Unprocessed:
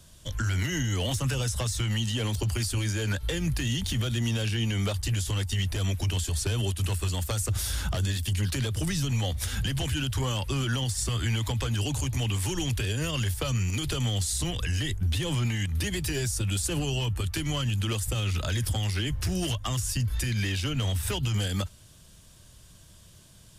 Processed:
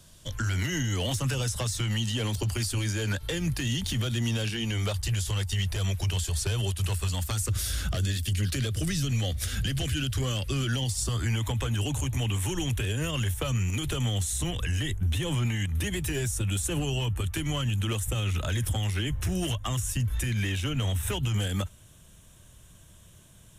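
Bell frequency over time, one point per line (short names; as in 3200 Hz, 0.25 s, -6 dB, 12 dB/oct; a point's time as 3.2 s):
bell -15 dB 0.31 oct
4.37 s 60 Hz
4.9 s 270 Hz
6.96 s 270 Hz
7.64 s 910 Hz
10.68 s 910 Hz
11.43 s 4700 Hz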